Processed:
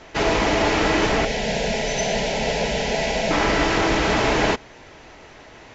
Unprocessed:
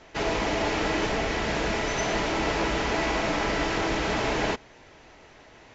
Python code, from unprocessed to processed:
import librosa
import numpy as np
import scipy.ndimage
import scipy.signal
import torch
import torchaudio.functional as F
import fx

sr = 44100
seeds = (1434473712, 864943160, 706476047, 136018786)

y = fx.fixed_phaser(x, sr, hz=320.0, stages=6, at=(1.25, 3.31))
y = y * 10.0 ** (7.0 / 20.0)